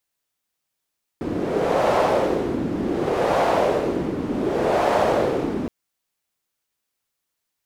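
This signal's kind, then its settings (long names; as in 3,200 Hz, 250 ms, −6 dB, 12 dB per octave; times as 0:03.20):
wind from filtered noise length 4.47 s, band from 280 Hz, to 660 Hz, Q 2.2, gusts 3, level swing 7 dB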